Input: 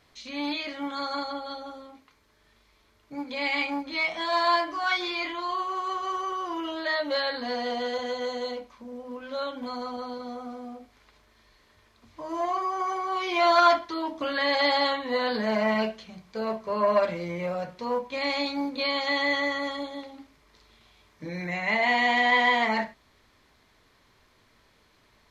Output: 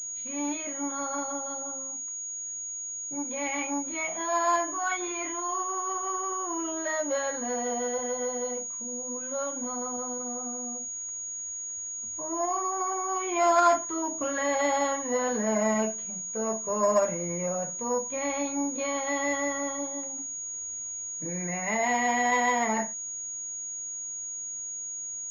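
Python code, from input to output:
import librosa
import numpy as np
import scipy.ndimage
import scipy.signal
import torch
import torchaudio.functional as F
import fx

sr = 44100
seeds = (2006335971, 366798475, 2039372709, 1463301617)

y = fx.high_shelf(x, sr, hz=2300.0, db=-11.5)
y = fx.pwm(y, sr, carrier_hz=6700.0)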